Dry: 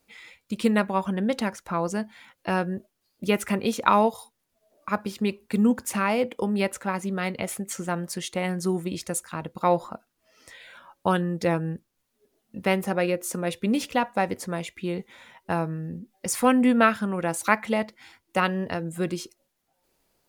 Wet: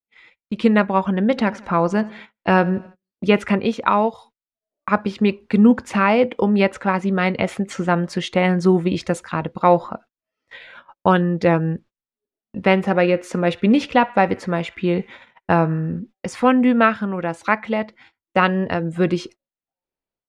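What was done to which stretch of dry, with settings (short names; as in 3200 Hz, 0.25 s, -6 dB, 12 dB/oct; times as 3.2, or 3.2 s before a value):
1.2–3.39 feedback echo 84 ms, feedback 53%, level -21.5 dB
12.7–16 narrowing echo 63 ms, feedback 71%, band-pass 1800 Hz, level -21 dB
whole clip: LPF 3300 Hz 12 dB/oct; gate -48 dBFS, range -30 dB; AGC gain up to 12.5 dB; gain -1 dB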